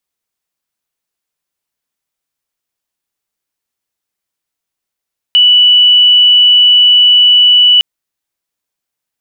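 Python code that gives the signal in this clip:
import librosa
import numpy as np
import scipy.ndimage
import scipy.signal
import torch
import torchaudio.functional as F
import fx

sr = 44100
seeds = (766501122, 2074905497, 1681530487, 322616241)

y = 10.0 ** (-3.0 / 20.0) * np.sin(2.0 * np.pi * (2960.0 * (np.arange(round(2.46 * sr)) / sr)))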